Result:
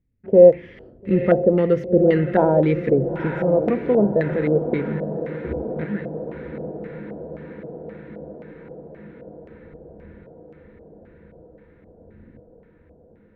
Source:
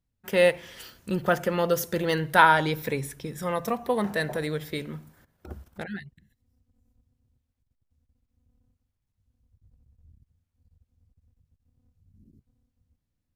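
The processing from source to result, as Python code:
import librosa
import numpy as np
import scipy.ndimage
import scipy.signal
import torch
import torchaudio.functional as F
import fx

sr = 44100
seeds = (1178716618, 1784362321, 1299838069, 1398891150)

y = fx.low_shelf_res(x, sr, hz=600.0, db=13.5, q=1.5)
y = fx.echo_diffused(y, sr, ms=942, feedback_pct=67, wet_db=-10.5)
y = fx.filter_lfo_lowpass(y, sr, shape='square', hz=1.9, low_hz=680.0, high_hz=2100.0, q=3.5)
y = y * 10.0 ** (-6.0 / 20.0)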